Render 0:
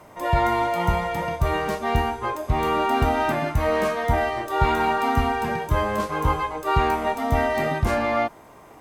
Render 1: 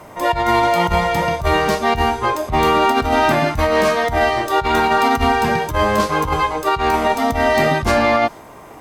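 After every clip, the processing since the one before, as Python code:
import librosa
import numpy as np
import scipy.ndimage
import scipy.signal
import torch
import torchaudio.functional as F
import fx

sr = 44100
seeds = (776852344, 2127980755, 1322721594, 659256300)

y = fx.over_compress(x, sr, threshold_db=-22.0, ratio=-0.5)
y = fx.dynamic_eq(y, sr, hz=4700.0, q=1.1, threshold_db=-47.0, ratio=4.0, max_db=6)
y = y * 10.0 ** (7.0 / 20.0)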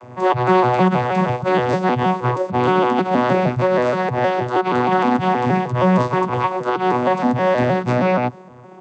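y = fx.vocoder_arp(x, sr, chord='bare fifth', root=47, every_ms=157)
y = fx.rider(y, sr, range_db=10, speed_s=2.0)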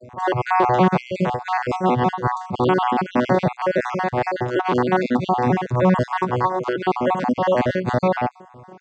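y = fx.spec_dropout(x, sr, seeds[0], share_pct=43)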